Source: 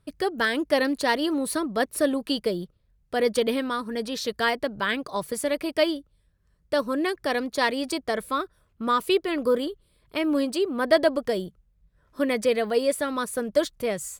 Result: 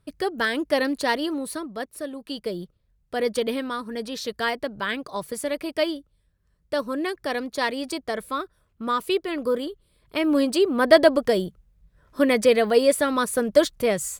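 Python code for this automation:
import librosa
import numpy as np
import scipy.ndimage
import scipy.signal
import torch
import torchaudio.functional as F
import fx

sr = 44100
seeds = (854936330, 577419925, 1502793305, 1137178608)

y = fx.gain(x, sr, db=fx.line((1.12, 0.0), (2.1, -10.5), (2.6, -1.5), (9.65, -1.5), (10.61, 5.0)))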